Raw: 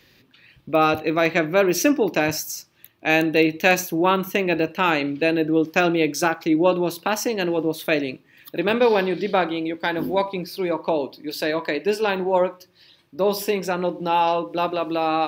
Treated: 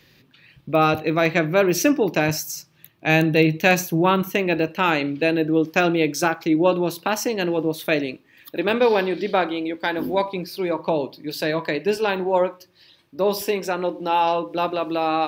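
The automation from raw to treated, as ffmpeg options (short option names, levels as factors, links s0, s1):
-af "asetnsamples=n=441:p=0,asendcmd='2.52 equalizer g 13;4.22 equalizer g 3;8.06 equalizer g -6;10.04 equalizer g 0;10.79 equalizer g 9;11.97 equalizer g -2;13.41 equalizer g -10.5;14.22 equalizer g -0.5',equalizer=f=150:t=o:w=0.43:g=7"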